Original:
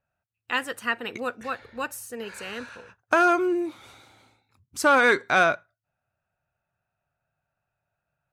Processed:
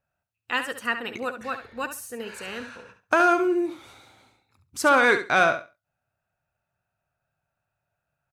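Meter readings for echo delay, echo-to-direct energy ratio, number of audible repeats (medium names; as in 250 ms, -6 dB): 69 ms, -10.0 dB, 2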